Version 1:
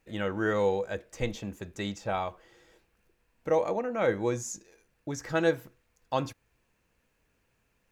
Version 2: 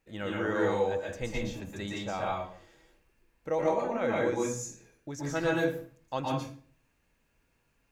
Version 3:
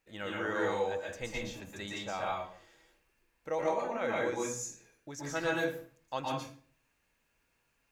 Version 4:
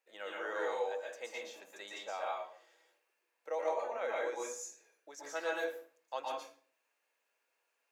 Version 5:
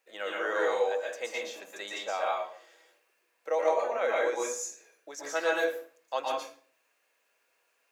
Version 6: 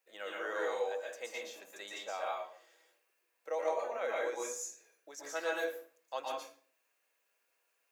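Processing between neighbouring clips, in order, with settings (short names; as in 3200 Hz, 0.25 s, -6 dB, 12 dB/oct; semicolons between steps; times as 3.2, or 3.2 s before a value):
reverb RT60 0.45 s, pre-delay 0.113 s, DRR -3.5 dB; gain -5 dB
low shelf 500 Hz -8.5 dB
ladder high-pass 400 Hz, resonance 30%; gain +1.5 dB
notch 880 Hz, Q 12; gain +8.5 dB
high shelf 9300 Hz +8 dB; gain -7.5 dB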